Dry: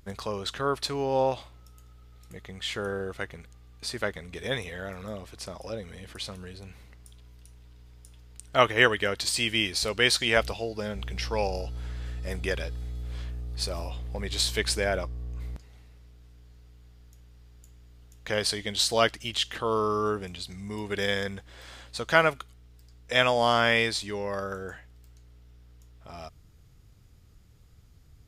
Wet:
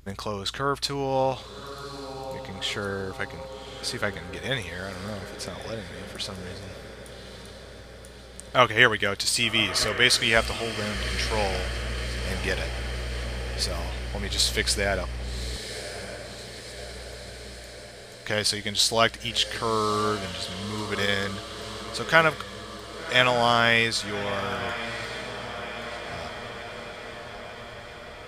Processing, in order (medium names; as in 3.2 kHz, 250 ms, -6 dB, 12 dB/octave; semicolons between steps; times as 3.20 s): on a send: echo that smears into a reverb 1143 ms, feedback 65%, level -11.5 dB; on the sum: dynamic bell 440 Hz, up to -4 dB, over -40 dBFS, Q 0.88; trim +3.5 dB